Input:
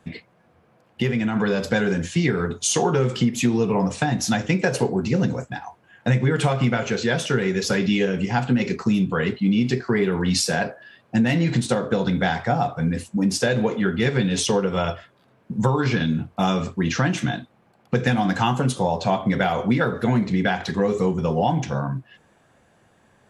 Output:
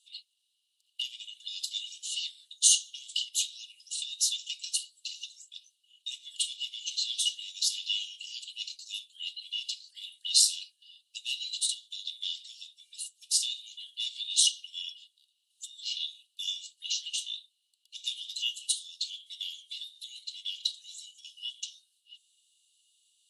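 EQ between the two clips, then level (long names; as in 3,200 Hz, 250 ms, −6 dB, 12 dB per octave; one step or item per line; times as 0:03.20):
Chebyshev high-pass with heavy ripple 2,800 Hz, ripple 9 dB
Bessel low-pass filter 8,100 Hz, order 2
high-shelf EQ 4,600 Hz +5.5 dB
+5.5 dB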